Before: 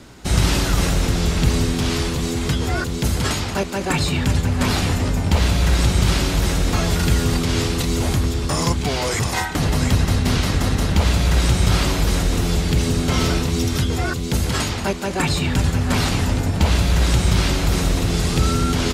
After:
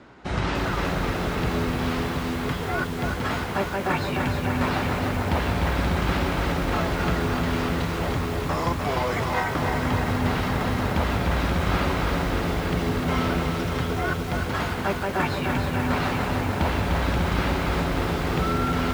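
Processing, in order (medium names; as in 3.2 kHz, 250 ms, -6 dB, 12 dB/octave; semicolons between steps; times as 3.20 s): low-pass 1.4 kHz 12 dB/octave; tilt EQ +3 dB/octave; bit-crushed delay 299 ms, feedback 80%, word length 7-bit, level -4.5 dB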